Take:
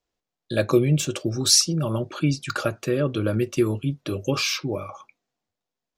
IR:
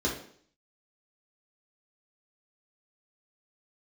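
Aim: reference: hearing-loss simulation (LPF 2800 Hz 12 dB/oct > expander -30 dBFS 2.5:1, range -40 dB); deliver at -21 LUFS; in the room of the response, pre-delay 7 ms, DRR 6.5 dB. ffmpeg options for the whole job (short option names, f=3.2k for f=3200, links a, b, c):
-filter_complex "[0:a]asplit=2[a][b];[1:a]atrim=start_sample=2205,adelay=7[c];[b][c]afir=irnorm=-1:irlink=0,volume=-15.5dB[d];[a][d]amix=inputs=2:normalize=0,lowpass=2.8k,agate=range=-40dB:threshold=-30dB:ratio=2.5,volume=1dB"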